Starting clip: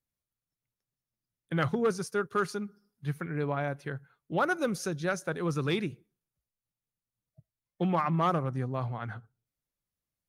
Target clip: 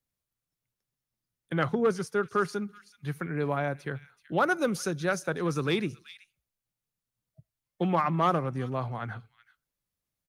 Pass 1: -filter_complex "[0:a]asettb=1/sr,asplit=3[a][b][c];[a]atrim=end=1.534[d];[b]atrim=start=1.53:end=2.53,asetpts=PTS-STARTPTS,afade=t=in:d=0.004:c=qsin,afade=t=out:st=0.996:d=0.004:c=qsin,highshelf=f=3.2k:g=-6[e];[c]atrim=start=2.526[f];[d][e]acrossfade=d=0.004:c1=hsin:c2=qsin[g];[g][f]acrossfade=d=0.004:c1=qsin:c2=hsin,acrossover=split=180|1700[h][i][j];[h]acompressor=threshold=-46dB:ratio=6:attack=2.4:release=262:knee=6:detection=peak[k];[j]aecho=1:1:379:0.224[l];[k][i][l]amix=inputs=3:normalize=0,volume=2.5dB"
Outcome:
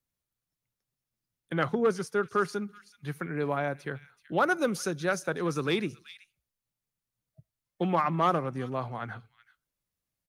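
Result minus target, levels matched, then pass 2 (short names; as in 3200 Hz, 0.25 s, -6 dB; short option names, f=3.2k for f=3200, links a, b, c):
compressor: peak gain reduction +7 dB
-filter_complex "[0:a]asettb=1/sr,asplit=3[a][b][c];[a]atrim=end=1.534[d];[b]atrim=start=1.53:end=2.53,asetpts=PTS-STARTPTS,afade=t=in:d=0.004:c=qsin,afade=t=out:st=0.996:d=0.004:c=qsin,highshelf=f=3.2k:g=-6[e];[c]atrim=start=2.526[f];[d][e]acrossfade=d=0.004:c1=hsin:c2=qsin[g];[g][f]acrossfade=d=0.004:c1=qsin:c2=hsin,acrossover=split=180|1700[h][i][j];[h]acompressor=threshold=-37.5dB:ratio=6:attack=2.4:release=262:knee=6:detection=peak[k];[j]aecho=1:1:379:0.224[l];[k][i][l]amix=inputs=3:normalize=0,volume=2.5dB"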